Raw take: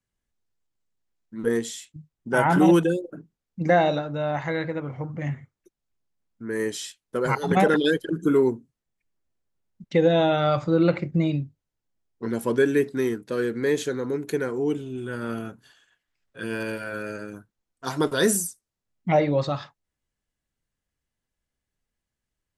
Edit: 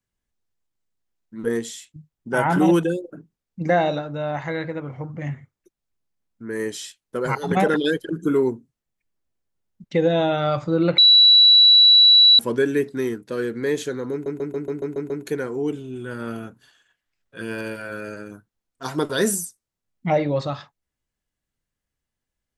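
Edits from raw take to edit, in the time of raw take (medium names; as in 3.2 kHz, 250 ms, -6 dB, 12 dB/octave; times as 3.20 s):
10.98–12.39 s: bleep 3.93 kHz -8.5 dBFS
14.12 s: stutter 0.14 s, 8 plays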